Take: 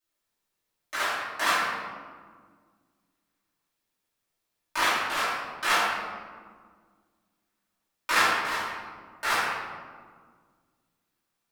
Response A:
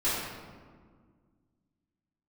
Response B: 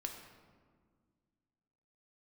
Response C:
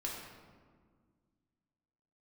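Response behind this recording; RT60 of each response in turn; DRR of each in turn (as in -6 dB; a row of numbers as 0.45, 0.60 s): A; 1.8, 1.8, 1.8 s; -13.5, 2.5, -3.5 dB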